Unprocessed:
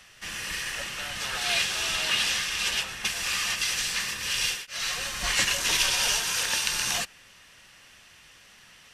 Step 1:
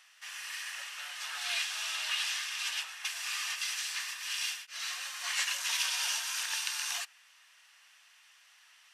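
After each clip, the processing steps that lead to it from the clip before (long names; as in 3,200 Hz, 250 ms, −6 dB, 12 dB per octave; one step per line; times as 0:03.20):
high-pass filter 820 Hz 24 dB per octave
level −7.5 dB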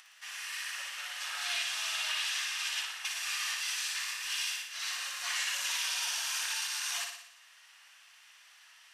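brickwall limiter −25 dBFS, peak gain reduction 9 dB
upward compression, threshold −55 dBFS
on a send: flutter between parallel walls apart 10.1 metres, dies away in 0.71 s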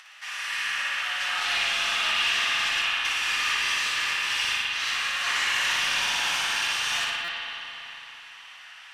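mid-hump overdrive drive 10 dB, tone 2,600 Hz, clips at −21 dBFS
spring reverb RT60 3.6 s, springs 41/55 ms, chirp 50 ms, DRR −3.5 dB
buffer that repeats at 0:07.24, samples 256, times 6
level +5 dB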